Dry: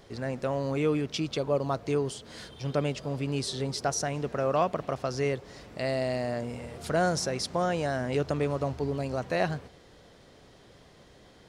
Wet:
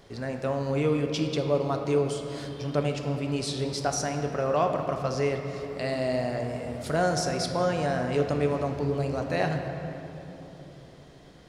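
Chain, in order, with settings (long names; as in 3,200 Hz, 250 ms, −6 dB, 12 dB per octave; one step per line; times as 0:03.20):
rectangular room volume 220 cubic metres, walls hard, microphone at 0.31 metres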